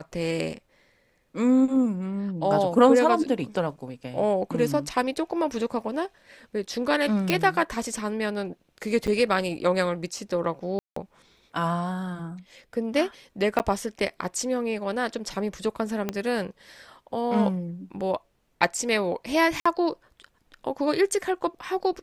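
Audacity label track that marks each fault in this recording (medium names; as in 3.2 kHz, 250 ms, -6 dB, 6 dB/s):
7.300000	7.300000	pop -8 dBFS
9.070000	9.080000	dropout 7.3 ms
10.790000	10.960000	dropout 174 ms
13.590000	13.600000	dropout 9.2 ms
16.090000	16.090000	pop -13 dBFS
19.600000	19.660000	dropout 55 ms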